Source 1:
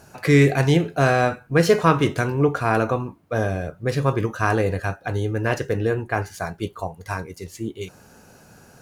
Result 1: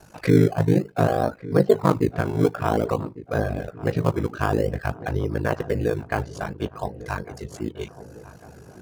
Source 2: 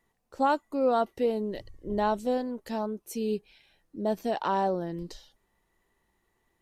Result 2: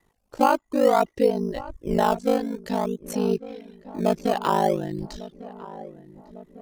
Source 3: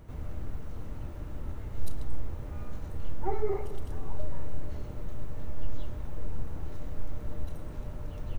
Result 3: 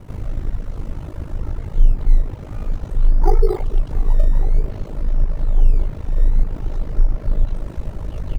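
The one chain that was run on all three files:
ring modulator 26 Hz; treble ducked by the level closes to 970 Hz, closed at -18 dBFS; reverb removal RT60 0.56 s; in parallel at -11.5 dB: decimation with a swept rate 16×, swing 100% 0.53 Hz; on the sum: darkening echo 1.151 s, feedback 62%, low-pass 1500 Hz, level -17 dB; match loudness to -24 LUFS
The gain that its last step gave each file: +0.5, +8.0, +12.0 dB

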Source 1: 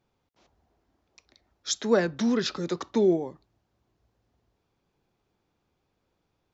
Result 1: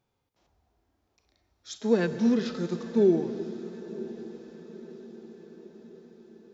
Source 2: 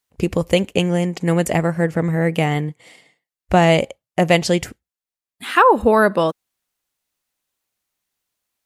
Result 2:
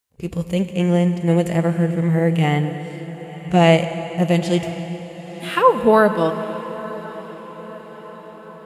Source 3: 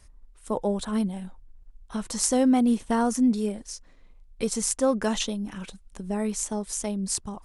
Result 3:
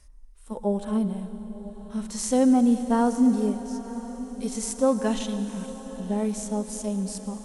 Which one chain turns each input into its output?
dynamic EQ 2800 Hz, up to +4 dB, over -39 dBFS, Q 1.7; harmonic-percussive split percussive -17 dB; high shelf 7500 Hz +4.5 dB; diffused feedback echo 0.999 s, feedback 56%, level -16 dB; plate-style reverb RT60 3.1 s, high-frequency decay 1×, pre-delay 80 ms, DRR 10.5 dB; gain +1.5 dB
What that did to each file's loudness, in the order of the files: -1.5, -1.0, +0.5 LU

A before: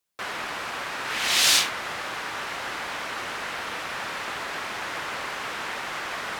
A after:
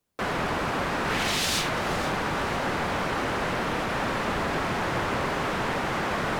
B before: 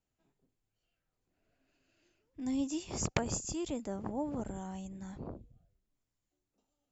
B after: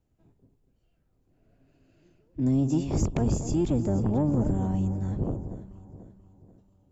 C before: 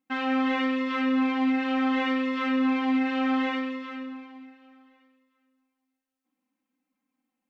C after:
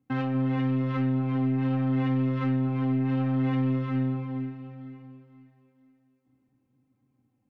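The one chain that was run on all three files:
octaver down 1 oct, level -1 dB; tilt shelf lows +7.5 dB, about 870 Hz; compressor, threshold -23 dBFS; limiter -21.5 dBFS; soft clip -23.5 dBFS; on a send: echo with dull and thin repeats by turns 0.243 s, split 1100 Hz, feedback 62%, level -10 dB; on the sum: match loudness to -27 LUFS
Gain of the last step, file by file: +6.0, +7.0, +2.5 dB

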